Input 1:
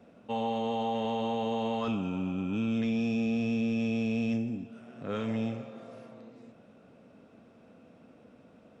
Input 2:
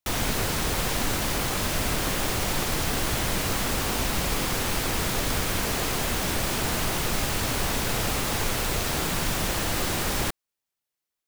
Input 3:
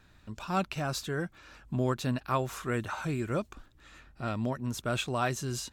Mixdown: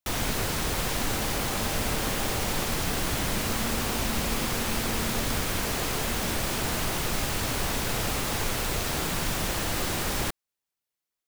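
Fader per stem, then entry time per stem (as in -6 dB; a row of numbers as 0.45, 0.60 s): -9.5 dB, -2.0 dB, off; 0.80 s, 0.00 s, off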